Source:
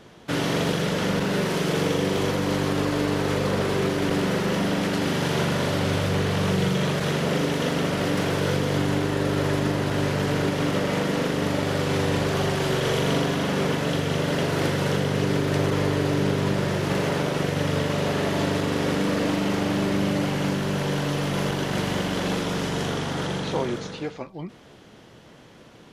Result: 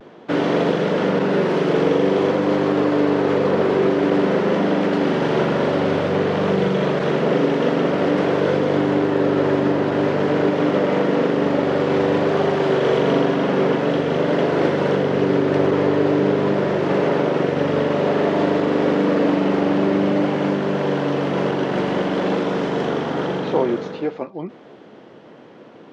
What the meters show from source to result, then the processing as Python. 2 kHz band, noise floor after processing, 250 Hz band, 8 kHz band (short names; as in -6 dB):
+2.0 dB, -43 dBFS, +5.5 dB, under -10 dB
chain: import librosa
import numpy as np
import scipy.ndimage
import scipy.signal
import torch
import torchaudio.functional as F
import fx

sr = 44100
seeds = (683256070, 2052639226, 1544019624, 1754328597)

y = scipy.signal.sosfilt(scipy.signal.butter(2, 340.0, 'highpass', fs=sr, output='sos'), x)
y = fx.low_shelf(y, sr, hz=490.0, db=9.0)
y = fx.vibrato(y, sr, rate_hz=0.5, depth_cents=30.0)
y = fx.spacing_loss(y, sr, db_at_10k=26)
y = F.gain(torch.from_numpy(y), 6.0).numpy()